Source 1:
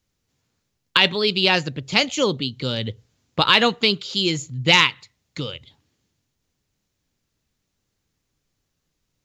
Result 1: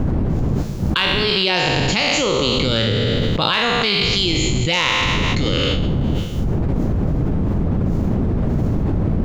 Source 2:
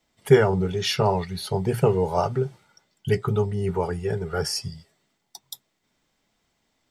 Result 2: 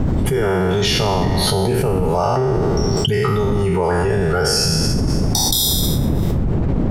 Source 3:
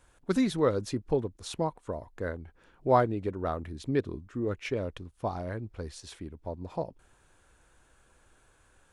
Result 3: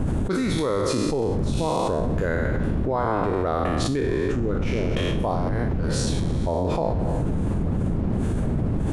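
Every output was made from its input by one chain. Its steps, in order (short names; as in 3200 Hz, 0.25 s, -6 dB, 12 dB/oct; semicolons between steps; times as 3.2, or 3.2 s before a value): spectral trails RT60 1.11 s; wind noise 180 Hz -28 dBFS; fast leveller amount 100%; gain -8 dB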